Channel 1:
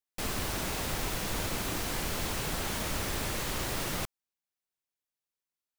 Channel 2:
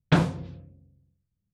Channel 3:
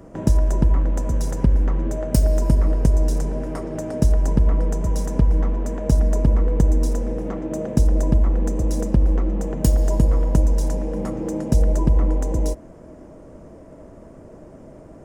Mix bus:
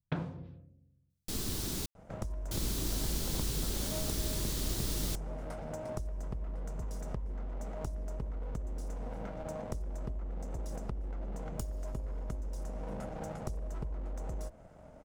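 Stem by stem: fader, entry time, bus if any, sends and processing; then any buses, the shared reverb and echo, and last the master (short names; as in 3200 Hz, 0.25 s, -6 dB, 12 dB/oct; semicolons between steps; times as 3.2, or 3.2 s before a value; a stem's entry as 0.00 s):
-1.0 dB, 1.10 s, muted 1.86–2.51, no send, band shelf 1200 Hz -11.5 dB 2.7 oct
-8.0 dB, 0.00 s, no send, LPF 1700 Hz 6 dB/oct; compressor 6:1, threshold -23 dBFS, peak gain reduction 9 dB
-10.5 dB, 1.95 s, no send, minimum comb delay 1.4 ms; compressor 12:1, threshold -24 dBFS, peak gain reduction 13.5 dB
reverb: off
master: dry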